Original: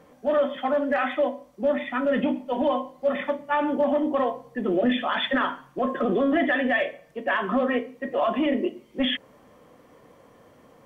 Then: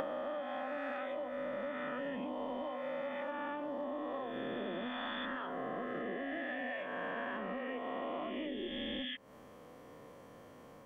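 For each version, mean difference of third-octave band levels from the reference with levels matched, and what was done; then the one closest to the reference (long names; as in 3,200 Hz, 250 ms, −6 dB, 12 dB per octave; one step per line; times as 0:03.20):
8.0 dB: peak hold with a rise ahead of every peak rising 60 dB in 2.96 s
downward compressor 16 to 1, threshold −31 dBFS, peak gain reduction 18 dB
level −5.5 dB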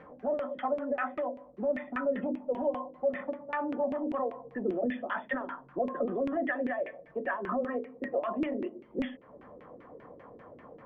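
5.0 dB: downward compressor 3 to 1, threshold −36 dBFS, peak gain reduction 13.5 dB
auto-filter low-pass saw down 5.1 Hz 320–2,400 Hz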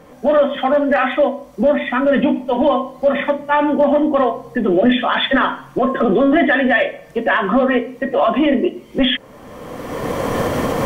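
3.5 dB: camcorder AGC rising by 24 dB per second
low-shelf EQ 60 Hz +8 dB
level +8.5 dB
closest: third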